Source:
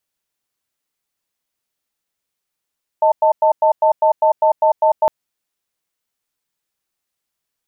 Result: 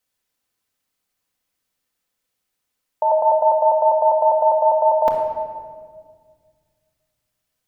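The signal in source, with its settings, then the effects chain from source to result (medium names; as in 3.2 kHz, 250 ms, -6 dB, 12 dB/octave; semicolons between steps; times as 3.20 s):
cadence 625 Hz, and 889 Hz, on 0.10 s, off 0.10 s, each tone -12.5 dBFS 2.06 s
simulated room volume 2500 m³, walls mixed, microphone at 2 m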